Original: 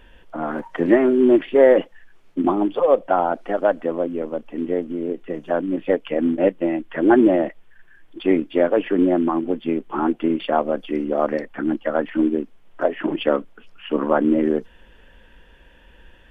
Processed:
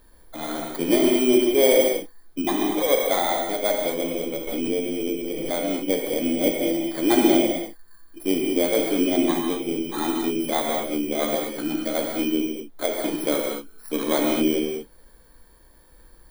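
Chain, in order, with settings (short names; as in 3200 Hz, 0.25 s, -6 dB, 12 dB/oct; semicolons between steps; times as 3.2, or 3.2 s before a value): FFT order left unsorted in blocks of 16 samples; non-linear reverb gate 0.26 s flat, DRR -0.5 dB; 4.47–5.52 backwards sustainer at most 20 dB/s; gain -6 dB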